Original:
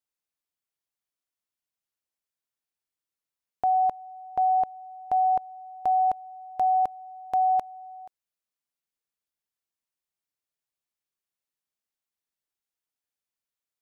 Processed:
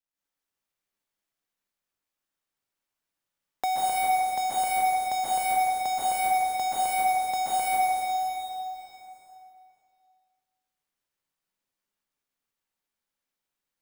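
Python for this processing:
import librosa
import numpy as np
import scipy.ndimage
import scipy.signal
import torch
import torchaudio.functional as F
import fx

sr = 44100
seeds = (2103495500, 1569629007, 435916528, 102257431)

y = fx.dead_time(x, sr, dead_ms=0.16)
y = fx.rev_plate(y, sr, seeds[0], rt60_s=2.3, hf_ratio=0.9, predelay_ms=115, drr_db=-9.5)
y = fx.band_squash(y, sr, depth_pct=40)
y = y * librosa.db_to_amplitude(-5.0)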